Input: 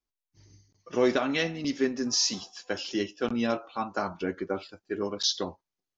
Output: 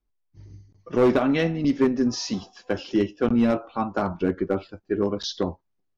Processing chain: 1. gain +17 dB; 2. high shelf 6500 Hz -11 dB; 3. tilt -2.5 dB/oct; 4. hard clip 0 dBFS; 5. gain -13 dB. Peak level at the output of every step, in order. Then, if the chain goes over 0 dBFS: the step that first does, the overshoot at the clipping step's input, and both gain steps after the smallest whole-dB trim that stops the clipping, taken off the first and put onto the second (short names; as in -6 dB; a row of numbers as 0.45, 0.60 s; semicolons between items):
+4.5, +4.0, +8.0, 0.0, -13.0 dBFS; step 1, 8.0 dB; step 1 +9 dB, step 5 -5 dB